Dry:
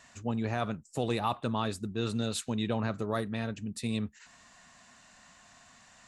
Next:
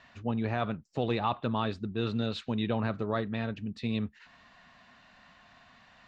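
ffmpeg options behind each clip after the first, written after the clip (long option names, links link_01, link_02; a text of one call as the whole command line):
ffmpeg -i in.wav -af "lowpass=frequency=4100:width=0.5412,lowpass=frequency=4100:width=1.3066,volume=1dB" out.wav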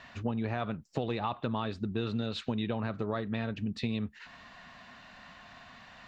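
ffmpeg -i in.wav -af "acompressor=threshold=-35dB:ratio=6,volume=6dB" out.wav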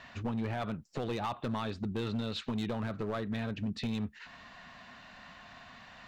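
ffmpeg -i in.wav -af "asoftclip=type=hard:threshold=-28.5dB" out.wav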